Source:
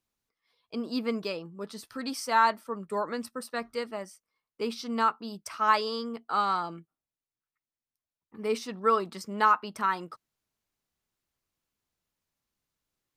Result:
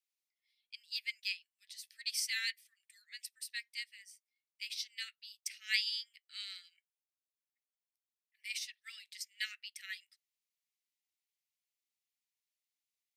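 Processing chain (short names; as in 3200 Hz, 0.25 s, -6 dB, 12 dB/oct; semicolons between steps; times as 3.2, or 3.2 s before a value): steep high-pass 1900 Hz 72 dB/oct; upward expander 1.5:1, over -54 dBFS; gain +4.5 dB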